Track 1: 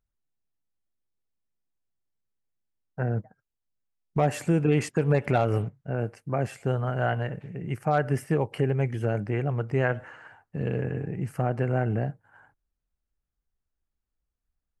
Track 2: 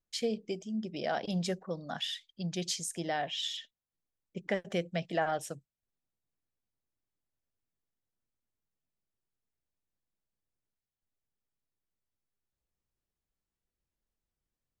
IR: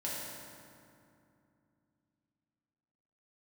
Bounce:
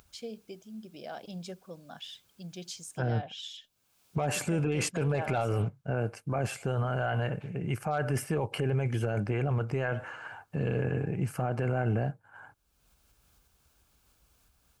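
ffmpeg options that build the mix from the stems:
-filter_complex "[0:a]acompressor=mode=upward:threshold=-38dB:ratio=2.5,highpass=73,equalizer=f=230:w=0.39:g=-5.5,volume=2dB[a];[1:a]volume=-8.5dB[b];[a][b]amix=inputs=2:normalize=0,bandreject=f=1.9k:w=5.7,dynaudnorm=f=400:g=17:m=4dB,alimiter=limit=-20.5dB:level=0:latency=1:release=16"

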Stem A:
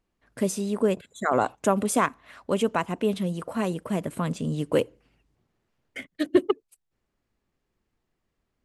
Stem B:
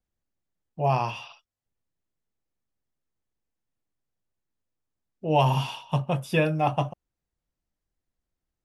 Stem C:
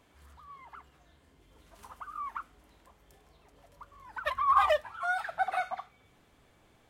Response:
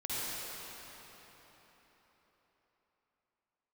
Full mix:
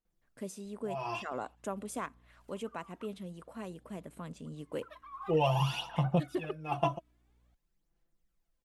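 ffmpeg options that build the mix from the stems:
-filter_complex "[0:a]volume=-15.5dB,asplit=2[a][b];[1:a]aecho=1:1:5.9:0.77,adelay=50,volume=-3dB[c];[2:a]alimiter=limit=-22dB:level=0:latency=1:release=156,aeval=exprs='val(0)+0.00316*(sin(2*PI*60*n/s)+sin(2*PI*2*60*n/s)/2+sin(2*PI*3*60*n/s)/3+sin(2*PI*4*60*n/s)/4+sin(2*PI*5*60*n/s)/5)':c=same,adelay=650,volume=-18dB[d];[b]apad=whole_len=383547[e];[c][e]sidechaincompress=threshold=-57dB:ratio=5:attack=6:release=195[f];[f][d]amix=inputs=2:normalize=0,aphaser=in_gain=1:out_gain=1:delay=3.1:decay=0.57:speed=0.5:type=sinusoidal,acompressor=threshold=-24dB:ratio=6,volume=0dB[g];[a][g]amix=inputs=2:normalize=0,equalizer=f=89:t=o:w=0.56:g=-7"

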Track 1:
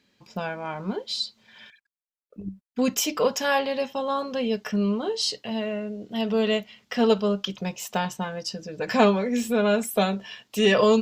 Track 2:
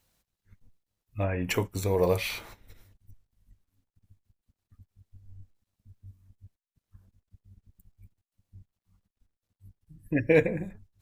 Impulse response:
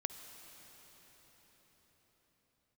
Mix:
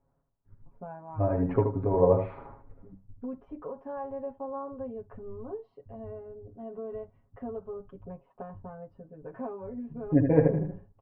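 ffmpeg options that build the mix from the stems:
-filter_complex "[0:a]acompressor=threshold=-24dB:ratio=6,adelay=450,volume=-12.5dB[a];[1:a]volume=0dB,asplit=3[b][c][d];[c]volume=-6dB[e];[d]apad=whole_len=505646[f];[a][f]sidechaincompress=threshold=-31dB:ratio=8:attack=16:release=718[g];[e]aecho=0:1:77|154|231:1|0.18|0.0324[h];[g][b][h]amix=inputs=3:normalize=0,lowpass=f=1.1k:w=0.5412,lowpass=f=1.1k:w=1.3066,aecho=1:1:7.3:0.93"

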